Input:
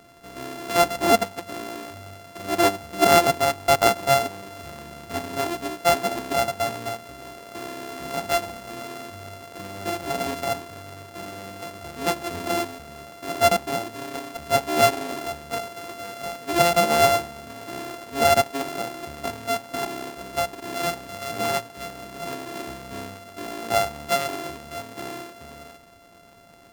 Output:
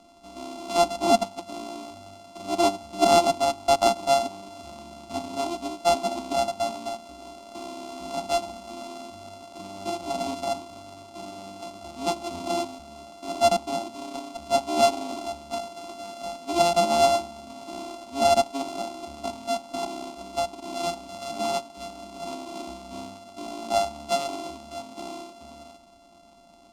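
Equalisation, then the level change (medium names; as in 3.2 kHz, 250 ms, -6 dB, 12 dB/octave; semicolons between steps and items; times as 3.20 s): distance through air 72 m; treble shelf 4.6 kHz +5.5 dB; static phaser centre 460 Hz, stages 6; 0.0 dB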